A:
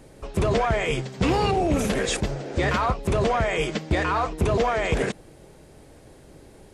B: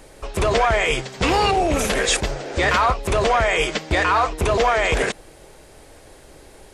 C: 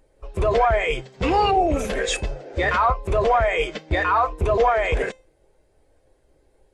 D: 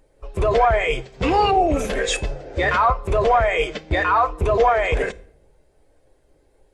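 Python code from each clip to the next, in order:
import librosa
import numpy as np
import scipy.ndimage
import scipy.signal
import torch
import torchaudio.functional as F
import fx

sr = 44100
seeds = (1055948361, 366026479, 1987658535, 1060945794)

y1 = fx.peak_eq(x, sr, hz=160.0, db=-12.0, octaves=2.6)
y1 = y1 * 10.0 ** (8.0 / 20.0)
y2 = fx.comb_fb(y1, sr, f0_hz=520.0, decay_s=0.56, harmonics='all', damping=0.0, mix_pct=60)
y2 = fx.spectral_expand(y2, sr, expansion=1.5)
y2 = y2 * 10.0 ** (6.0 / 20.0)
y3 = fx.room_shoebox(y2, sr, seeds[0], volume_m3=2000.0, walls='furnished', distance_m=0.34)
y3 = y3 * 10.0 ** (1.5 / 20.0)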